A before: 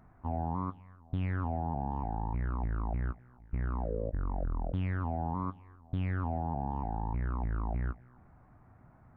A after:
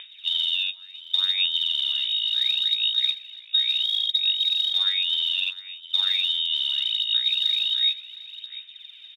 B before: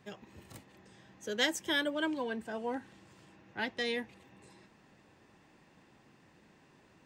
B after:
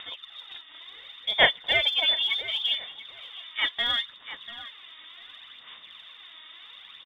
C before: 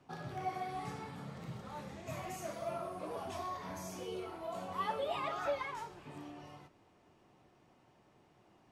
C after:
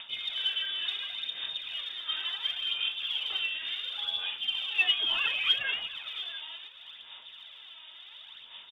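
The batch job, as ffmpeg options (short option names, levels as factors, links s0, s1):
-filter_complex "[0:a]acompressor=mode=upward:threshold=0.00447:ratio=2.5,lowpass=f=3200:t=q:w=0.5098,lowpass=f=3200:t=q:w=0.6013,lowpass=f=3200:t=q:w=0.9,lowpass=f=3200:t=q:w=2.563,afreqshift=-3800,asplit=2[s0][s1];[s1]adelay=693,lowpass=f=3000:p=1,volume=0.211,asplit=2[s2][s3];[s3]adelay=693,lowpass=f=3000:p=1,volume=0.2[s4];[s2][s4]amix=inputs=2:normalize=0[s5];[s0][s5]amix=inputs=2:normalize=0,aphaser=in_gain=1:out_gain=1:delay=3.2:decay=0.49:speed=0.7:type=sinusoidal,volume=2.37"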